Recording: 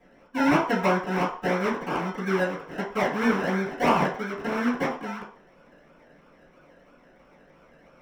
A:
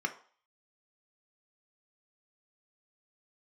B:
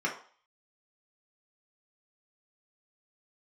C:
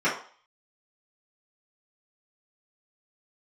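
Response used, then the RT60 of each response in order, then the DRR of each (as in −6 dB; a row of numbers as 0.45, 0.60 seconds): C; 0.45, 0.45, 0.45 seconds; 5.0, −3.0, −11.5 decibels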